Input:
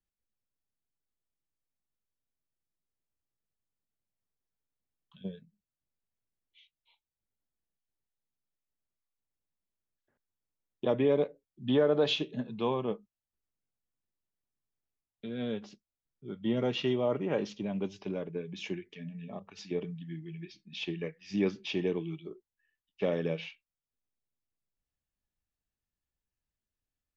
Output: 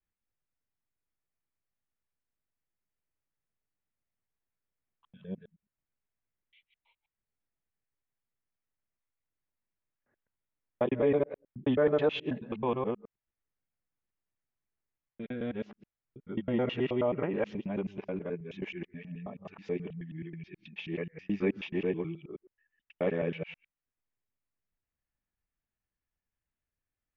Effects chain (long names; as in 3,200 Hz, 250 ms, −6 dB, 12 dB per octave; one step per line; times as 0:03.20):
reversed piece by piece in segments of 107 ms
high shelf with overshoot 3,200 Hz −14 dB, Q 1.5